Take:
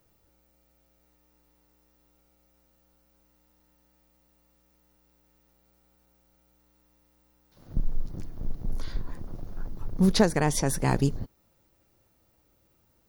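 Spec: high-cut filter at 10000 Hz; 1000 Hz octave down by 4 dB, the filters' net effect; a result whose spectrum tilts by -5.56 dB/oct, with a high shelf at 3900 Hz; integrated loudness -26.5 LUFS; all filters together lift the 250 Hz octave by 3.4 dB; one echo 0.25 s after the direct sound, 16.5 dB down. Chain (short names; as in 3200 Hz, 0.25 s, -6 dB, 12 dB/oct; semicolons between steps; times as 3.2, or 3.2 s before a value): LPF 10000 Hz; bell 250 Hz +5 dB; bell 1000 Hz -6 dB; high shelf 3900 Hz +3 dB; echo 0.25 s -16.5 dB; gain +0.5 dB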